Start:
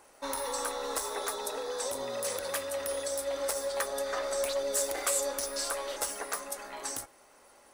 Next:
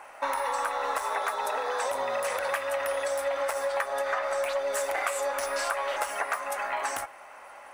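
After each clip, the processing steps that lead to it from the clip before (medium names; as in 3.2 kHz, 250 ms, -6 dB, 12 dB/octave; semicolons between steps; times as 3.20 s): high-order bell 1.3 kHz +14.5 dB 2.6 oct; compression, threshold -26 dBFS, peak gain reduction 11 dB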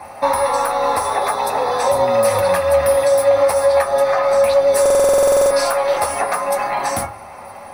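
reverberation RT60 0.30 s, pre-delay 3 ms, DRR -2.5 dB; buffer glitch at 4.81 s, samples 2048, times 14; trim +3 dB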